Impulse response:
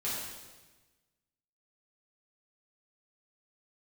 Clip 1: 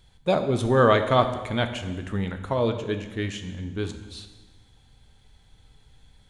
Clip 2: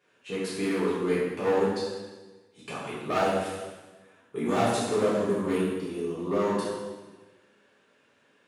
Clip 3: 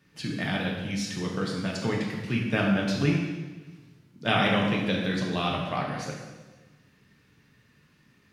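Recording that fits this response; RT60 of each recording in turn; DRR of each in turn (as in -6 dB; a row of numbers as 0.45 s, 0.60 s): 2; 1.2 s, 1.2 s, 1.2 s; 7.0 dB, -10.0 dB, -2.0 dB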